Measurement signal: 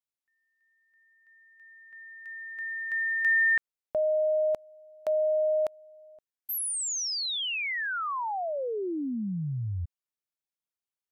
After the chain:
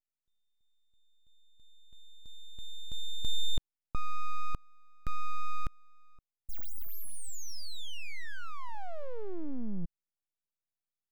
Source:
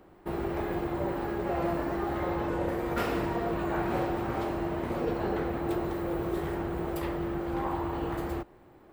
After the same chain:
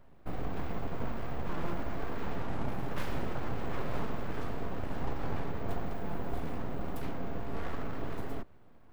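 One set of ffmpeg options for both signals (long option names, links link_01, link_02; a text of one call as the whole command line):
ffmpeg -i in.wav -af "aeval=exprs='abs(val(0))':channel_layout=same,lowshelf=frequency=360:gain=10.5,volume=-7.5dB" out.wav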